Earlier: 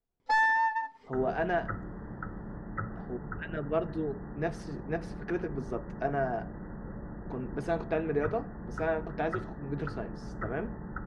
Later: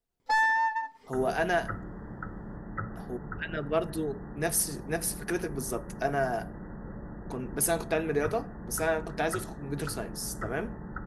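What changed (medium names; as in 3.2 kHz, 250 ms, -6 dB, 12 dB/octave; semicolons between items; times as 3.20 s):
speech: remove tape spacing loss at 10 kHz 26 dB; master: remove distance through air 75 m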